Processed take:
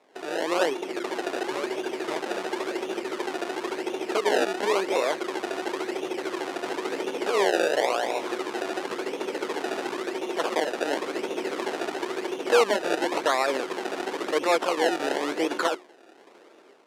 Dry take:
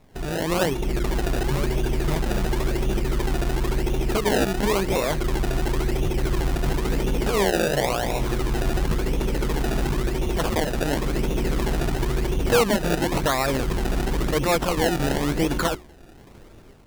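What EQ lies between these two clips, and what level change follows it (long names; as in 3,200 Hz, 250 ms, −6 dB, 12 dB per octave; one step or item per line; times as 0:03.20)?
high-pass filter 340 Hz 24 dB per octave
low-pass filter 11,000 Hz 12 dB per octave
high-shelf EQ 6,600 Hz −9.5 dB
0.0 dB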